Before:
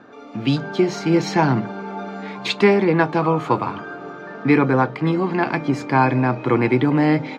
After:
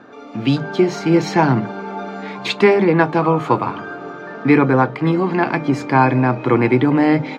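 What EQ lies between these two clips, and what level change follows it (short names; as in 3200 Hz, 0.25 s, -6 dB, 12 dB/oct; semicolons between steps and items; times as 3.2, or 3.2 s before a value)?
notches 50/100/150/200 Hz; dynamic EQ 5100 Hz, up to -3 dB, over -37 dBFS, Q 0.78; +3.0 dB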